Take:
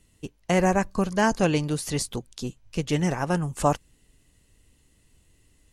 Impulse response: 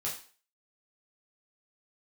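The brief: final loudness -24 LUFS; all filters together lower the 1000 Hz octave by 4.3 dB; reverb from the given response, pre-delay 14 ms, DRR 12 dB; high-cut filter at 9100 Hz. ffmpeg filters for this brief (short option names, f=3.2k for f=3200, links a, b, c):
-filter_complex "[0:a]lowpass=9.1k,equalizer=f=1k:t=o:g=-6,asplit=2[a][b];[1:a]atrim=start_sample=2205,adelay=14[c];[b][c]afir=irnorm=-1:irlink=0,volume=-14.5dB[d];[a][d]amix=inputs=2:normalize=0,volume=2.5dB"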